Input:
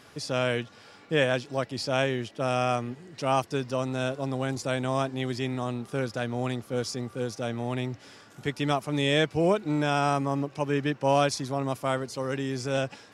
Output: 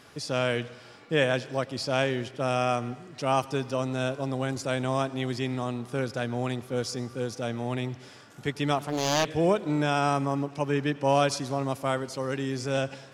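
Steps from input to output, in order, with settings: on a send at -18 dB: reverberation RT60 1.3 s, pre-delay 78 ms; 8.78–9.30 s: on the sum: loudspeaker Doppler distortion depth 0.73 ms

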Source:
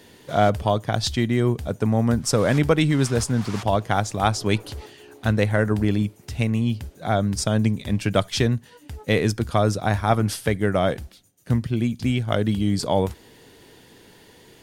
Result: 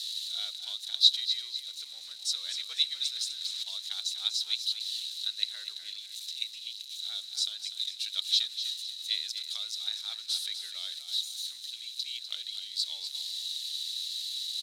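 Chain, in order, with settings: zero-crossing glitches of -21.5 dBFS; ladder band-pass 4 kHz, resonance 90%; frequency-shifting echo 248 ms, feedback 40%, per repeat +49 Hz, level -9.5 dB; trim +3 dB

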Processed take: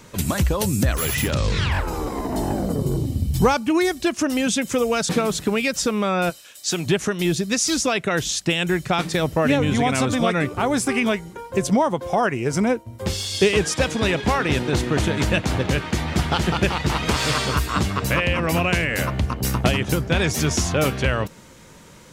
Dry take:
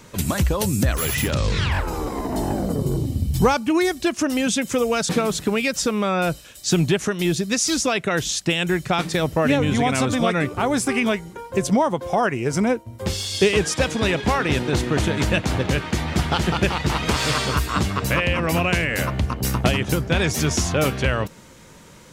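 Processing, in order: 6.29–6.85 s: high-pass 1.2 kHz -> 470 Hz 6 dB/octave

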